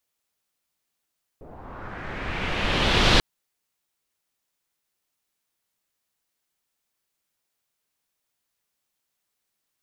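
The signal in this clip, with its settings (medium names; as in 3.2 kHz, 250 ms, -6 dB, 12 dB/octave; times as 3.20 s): swept filtered noise pink, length 1.79 s lowpass, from 550 Hz, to 4 kHz, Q 1.9, linear, gain ramp +27.5 dB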